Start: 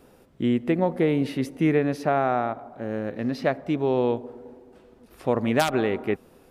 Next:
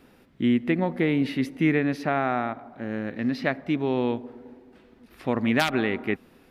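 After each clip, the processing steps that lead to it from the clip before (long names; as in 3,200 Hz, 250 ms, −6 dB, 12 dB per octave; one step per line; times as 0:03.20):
graphic EQ with 10 bands 250 Hz +5 dB, 500 Hz −4 dB, 2,000 Hz +7 dB, 4,000 Hz +4 dB, 8,000 Hz −4 dB
level −2.5 dB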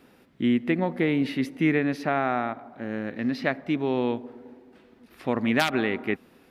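low-shelf EQ 66 Hz −11.5 dB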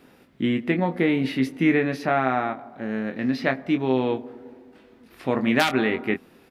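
double-tracking delay 23 ms −7 dB
level +2 dB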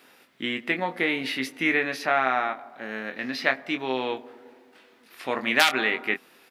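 high-pass filter 1,500 Hz 6 dB per octave
level +5.5 dB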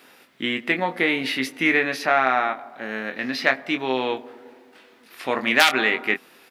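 soft clipping −4 dBFS, distortion −27 dB
level +4 dB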